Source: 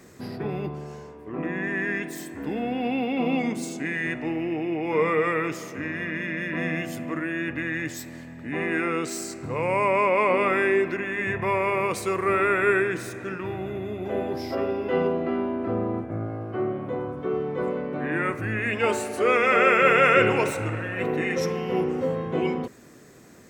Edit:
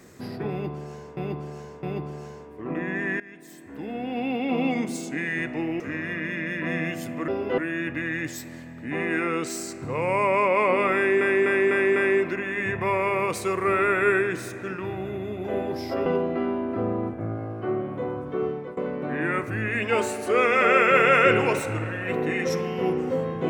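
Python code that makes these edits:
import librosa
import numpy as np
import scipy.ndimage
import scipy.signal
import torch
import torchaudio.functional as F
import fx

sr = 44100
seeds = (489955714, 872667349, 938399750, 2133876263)

y = fx.edit(x, sr, fx.repeat(start_s=0.51, length_s=0.66, count=3),
    fx.fade_in_from(start_s=1.88, length_s=1.29, floor_db=-21.0),
    fx.cut(start_s=4.48, length_s=1.23),
    fx.repeat(start_s=10.57, length_s=0.25, count=5),
    fx.move(start_s=14.67, length_s=0.3, to_s=7.19),
    fx.fade_out_to(start_s=17.38, length_s=0.3, floor_db=-19.0), tone=tone)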